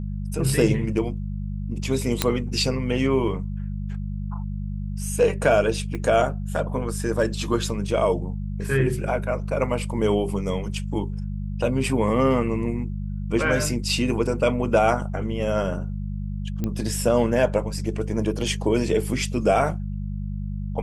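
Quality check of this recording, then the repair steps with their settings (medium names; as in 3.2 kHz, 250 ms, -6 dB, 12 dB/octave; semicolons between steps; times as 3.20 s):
hum 50 Hz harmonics 4 -29 dBFS
2.22 s: pop -3 dBFS
5.95 s: pop -19 dBFS
16.64 s: pop -14 dBFS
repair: de-click; de-hum 50 Hz, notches 4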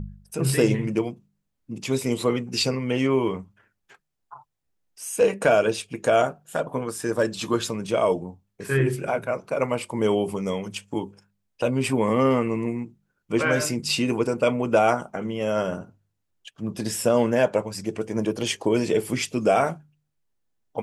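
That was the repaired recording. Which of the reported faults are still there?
5.95 s: pop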